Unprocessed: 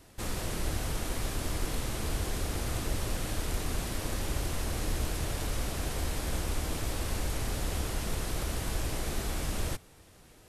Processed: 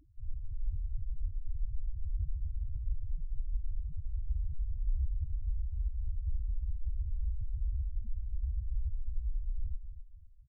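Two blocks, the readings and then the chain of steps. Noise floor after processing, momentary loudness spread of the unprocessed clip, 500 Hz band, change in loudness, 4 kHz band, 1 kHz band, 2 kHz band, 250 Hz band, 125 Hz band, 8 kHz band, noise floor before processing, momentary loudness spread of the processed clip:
−51 dBFS, 1 LU, below −40 dB, −5.5 dB, below −40 dB, below −40 dB, below −40 dB, below −25 dB, −3.5 dB, below −40 dB, −56 dBFS, 5 LU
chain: repeating echo 256 ms, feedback 35%, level −10.5 dB
spectral peaks only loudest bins 2
level +3 dB

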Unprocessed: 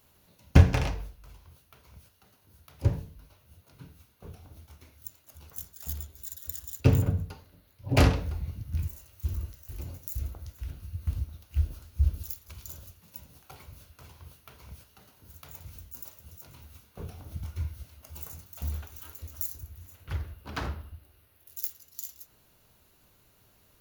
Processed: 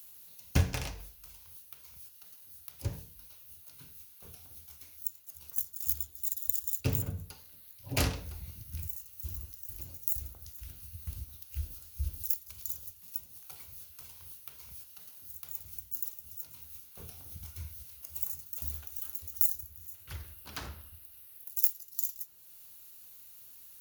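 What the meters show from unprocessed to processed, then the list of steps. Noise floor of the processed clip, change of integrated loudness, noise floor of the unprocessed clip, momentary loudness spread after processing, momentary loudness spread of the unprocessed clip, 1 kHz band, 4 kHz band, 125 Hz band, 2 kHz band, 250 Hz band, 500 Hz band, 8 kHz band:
−55 dBFS, −4.0 dB, −64 dBFS, 18 LU, 25 LU, −9.0 dB, −2.0 dB, −10.5 dB, −6.0 dB, −10.5 dB, −10.0 dB, +3.5 dB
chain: first-order pre-emphasis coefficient 0.8
one half of a high-frequency compander encoder only
level +3.5 dB

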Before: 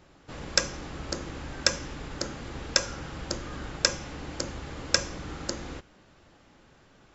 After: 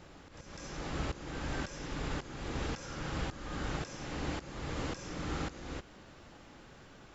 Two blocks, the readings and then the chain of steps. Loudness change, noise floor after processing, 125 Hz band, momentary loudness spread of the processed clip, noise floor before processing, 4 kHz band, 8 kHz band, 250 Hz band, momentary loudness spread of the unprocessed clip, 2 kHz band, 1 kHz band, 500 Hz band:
−9.0 dB, −55 dBFS, −0.5 dB, 16 LU, −59 dBFS, −15.5 dB, can't be measured, −1.5 dB, 12 LU, −9.0 dB, −2.5 dB, −6.0 dB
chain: volume swells 427 ms
backwards echo 203 ms −9.5 dB
level +3 dB

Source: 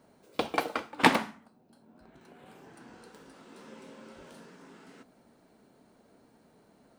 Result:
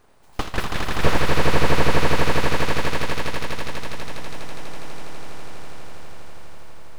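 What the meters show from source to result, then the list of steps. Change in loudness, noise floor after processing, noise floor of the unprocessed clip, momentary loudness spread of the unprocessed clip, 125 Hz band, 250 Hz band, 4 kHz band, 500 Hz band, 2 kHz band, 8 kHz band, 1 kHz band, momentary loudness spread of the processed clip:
+5.0 dB, −46 dBFS, −64 dBFS, 13 LU, +21.5 dB, +8.0 dB, +10.5 dB, +12.5 dB, +9.5 dB, +13.0 dB, +7.5 dB, 20 LU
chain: full-wave rectification
echo that builds up and dies away 82 ms, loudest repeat 8, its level −3.5 dB
slew-rate limiting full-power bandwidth 69 Hz
level +7 dB

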